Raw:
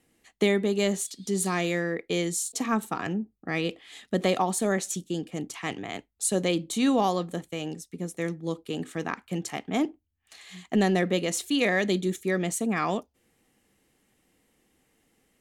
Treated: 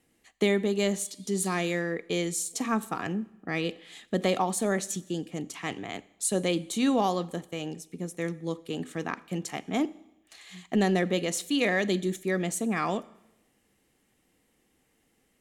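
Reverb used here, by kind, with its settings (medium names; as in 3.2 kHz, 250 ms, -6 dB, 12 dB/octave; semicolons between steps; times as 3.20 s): Schroeder reverb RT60 0.92 s, combs from 28 ms, DRR 19.5 dB; trim -1.5 dB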